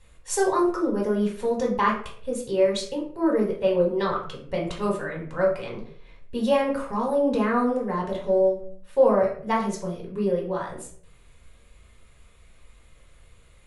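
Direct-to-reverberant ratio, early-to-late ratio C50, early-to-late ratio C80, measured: -2.5 dB, 7.5 dB, 11.0 dB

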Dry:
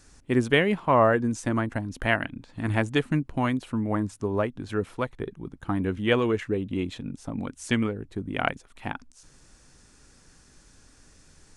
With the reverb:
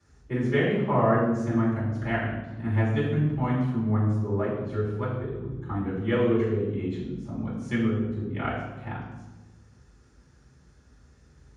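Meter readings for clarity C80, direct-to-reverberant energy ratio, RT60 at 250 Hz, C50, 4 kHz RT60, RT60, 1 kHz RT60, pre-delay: 4.0 dB, -11.5 dB, 1.5 s, 2.0 dB, 0.80 s, 1.1 s, 1.0 s, 3 ms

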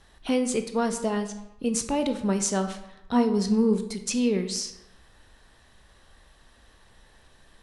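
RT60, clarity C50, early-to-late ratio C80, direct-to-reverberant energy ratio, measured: 0.90 s, 10.0 dB, 13.0 dB, 7.5 dB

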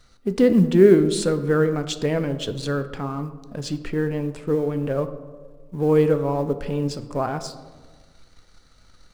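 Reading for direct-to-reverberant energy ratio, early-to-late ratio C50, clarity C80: 10.0 dB, 12.5 dB, 14.0 dB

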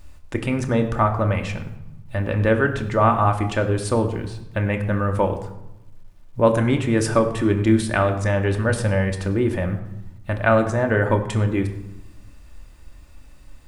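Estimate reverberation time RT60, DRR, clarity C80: 0.90 s, 4.0 dB, 12.0 dB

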